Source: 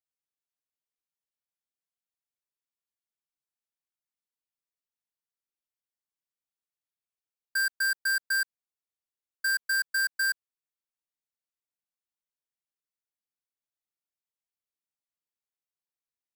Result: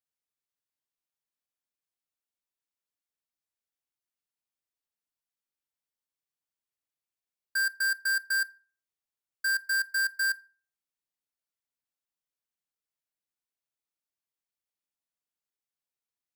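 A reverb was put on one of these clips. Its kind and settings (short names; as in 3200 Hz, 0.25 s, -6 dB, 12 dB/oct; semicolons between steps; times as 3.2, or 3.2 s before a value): FDN reverb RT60 0.41 s, low-frequency decay 1.05×, high-frequency decay 0.7×, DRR 17 dB; gain -1 dB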